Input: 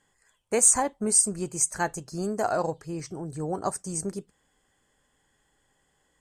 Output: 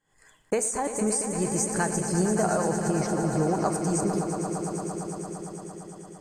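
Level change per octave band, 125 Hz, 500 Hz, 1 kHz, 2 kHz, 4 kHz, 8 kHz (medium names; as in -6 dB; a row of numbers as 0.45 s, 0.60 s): +8.0 dB, +3.5 dB, +2.0 dB, +2.0 dB, 0.0 dB, -5.5 dB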